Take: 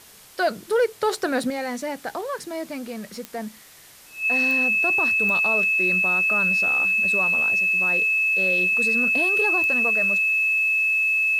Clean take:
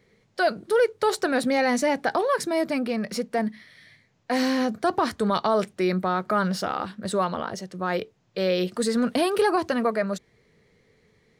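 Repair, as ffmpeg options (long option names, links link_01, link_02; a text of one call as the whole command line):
ffmpeg -i in.wav -af "adeclick=threshold=4,bandreject=frequency=2600:width=30,afwtdn=0.0045,asetnsamples=nb_out_samples=441:pad=0,asendcmd='1.5 volume volume 6.5dB',volume=0dB" out.wav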